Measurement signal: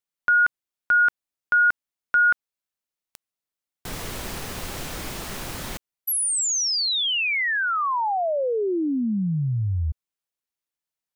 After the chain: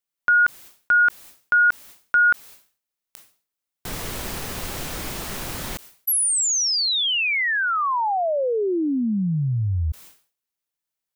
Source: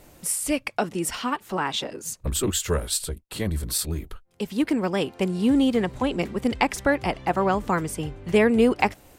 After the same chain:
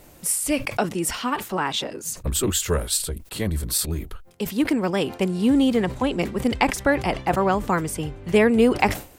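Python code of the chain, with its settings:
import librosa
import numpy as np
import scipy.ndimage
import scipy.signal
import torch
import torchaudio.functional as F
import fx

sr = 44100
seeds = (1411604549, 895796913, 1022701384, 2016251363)

y = fx.high_shelf(x, sr, hz=12000.0, db=4.5)
y = fx.sustainer(y, sr, db_per_s=140.0)
y = y * librosa.db_to_amplitude(1.5)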